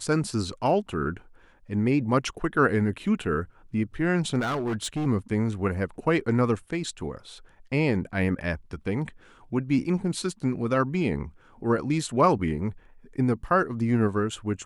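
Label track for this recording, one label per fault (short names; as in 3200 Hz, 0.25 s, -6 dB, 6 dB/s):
4.390000	5.070000	clipped -24.5 dBFS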